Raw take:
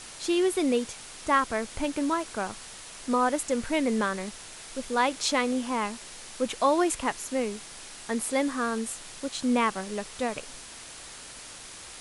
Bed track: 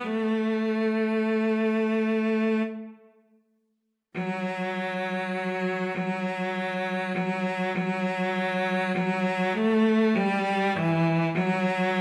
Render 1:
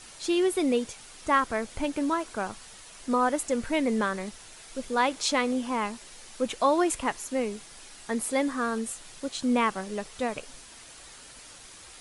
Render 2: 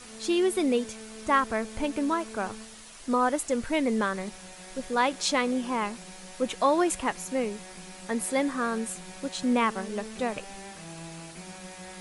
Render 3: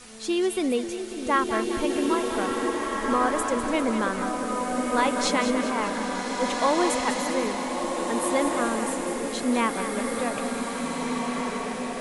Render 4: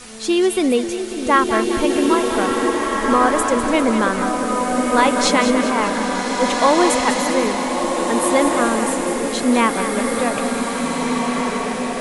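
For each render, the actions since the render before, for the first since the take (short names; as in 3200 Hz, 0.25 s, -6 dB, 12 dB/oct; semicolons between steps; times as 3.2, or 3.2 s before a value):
denoiser 6 dB, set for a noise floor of -45 dBFS
add bed track -19.5 dB
split-band echo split 590 Hz, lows 0.546 s, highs 0.199 s, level -9.5 dB; bloom reverb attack 1.81 s, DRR 0.5 dB
gain +8 dB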